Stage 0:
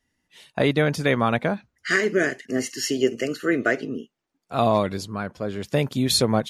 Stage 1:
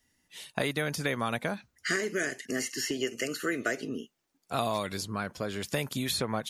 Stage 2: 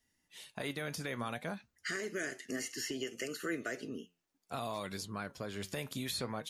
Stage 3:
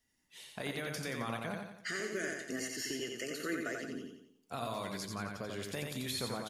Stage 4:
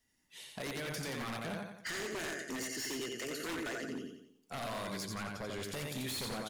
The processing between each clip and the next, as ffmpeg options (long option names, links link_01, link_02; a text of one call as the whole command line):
ffmpeg -i in.wav -filter_complex "[0:a]highshelf=frequency=4700:gain=10,acrossover=split=1000|2300|6100[link_01][link_02][link_03][link_04];[link_01]acompressor=threshold=-32dB:ratio=4[link_05];[link_02]acompressor=threshold=-35dB:ratio=4[link_06];[link_03]acompressor=threshold=-42dB:ratio=4[link_07];[link_04]acompressor=threshold=-41dB:ratio=4[link_08];[link_05][link_06][link_07][link_08]amix=inputs=4:normalize=0" out.wav
ffmpeg -i in.wav -af "alimiter=limit=-20dB:level=0:latency=1:release=68,flanger=delay=4.3:depth=7.5:regen=78:speed=0.6:shape=triangular,volume=-2dB" out.wav
ffmpeg -i in.wav -af "aecho=1:1:88|176|264|352|440|528:0.631|0.29|0.134|0.0614|0.0283|0.013,volume=-1dB" out.wav
ffmpeg -i in.wav -af "aeval=exprs='0.0178*(abs(mod(val(0)/0.0178+3,4)-2)-1)':channel_layout=same,volume=1.5dB" out.wav